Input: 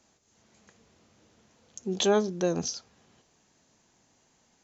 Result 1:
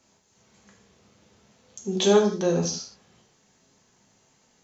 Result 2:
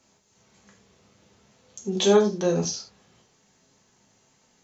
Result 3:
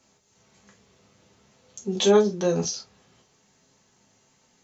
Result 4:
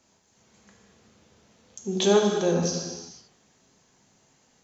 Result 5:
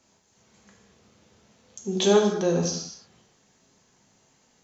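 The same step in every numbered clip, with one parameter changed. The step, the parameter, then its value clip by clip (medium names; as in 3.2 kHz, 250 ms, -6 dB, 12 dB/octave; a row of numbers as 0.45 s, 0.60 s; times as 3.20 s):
gated-style reverb, gate: 200 ms, 130 ms, 80 ms, 520 ms, 300 ms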